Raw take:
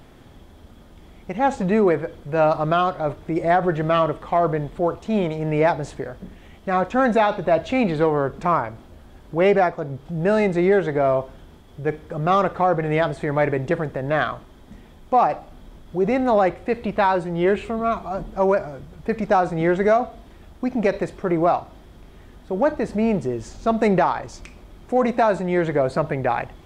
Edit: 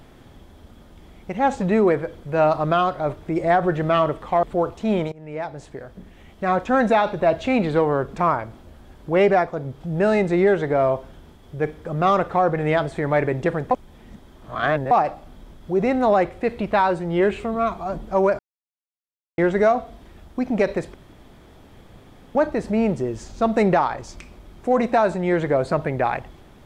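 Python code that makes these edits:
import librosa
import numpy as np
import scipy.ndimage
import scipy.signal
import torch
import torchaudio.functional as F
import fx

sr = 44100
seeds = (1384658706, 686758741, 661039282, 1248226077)

y = fx.edit(x, sr, fx.cut(start_s=4.43, length_s=0.25),
    fx.fade_in_from(start_s=5.37, length_s=1.37, floor_db=-21.5),
    fx.reverse_span(start_s=13.96, length_s=1.2),
    fx.silence(start_s=18.64, length_s=0.99),
    fx.room_tone_fill(start_s=21.19, length_s=1.41), tone=tone)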